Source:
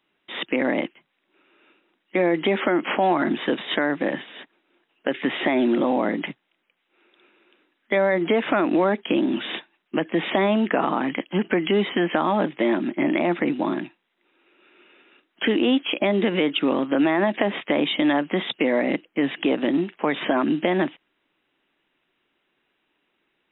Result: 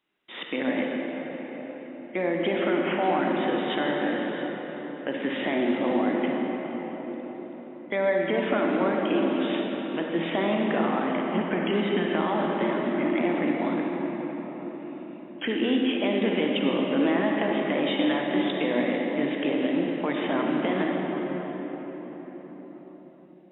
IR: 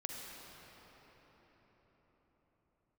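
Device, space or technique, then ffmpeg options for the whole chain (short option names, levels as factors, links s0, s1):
cathedral: -filter_complex "[1:a]atrim=start_sample=2205[s0];[0:a][s0]afir=irnorm=-1:irlink=0,volume=0.668"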